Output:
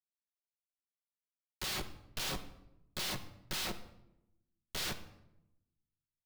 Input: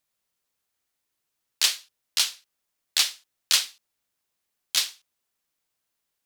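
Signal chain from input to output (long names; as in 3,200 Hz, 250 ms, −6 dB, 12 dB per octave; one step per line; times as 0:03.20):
inverse Chebyshev high-pass filter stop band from 280 Hz, stop band 50 dB
reversed playback
downward compressor, threshold −30 dBFS, peak gain reduction 14 dB
reversed playback
brickwall limiter −28.5 dBFS, peak gain reduction 10.5 dB
comparator with hysteresis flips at −42.5 dBFS
convolution reverb RT60 0.85 s, pre-delay 5 ms, DRR 7 dB
level +10 dB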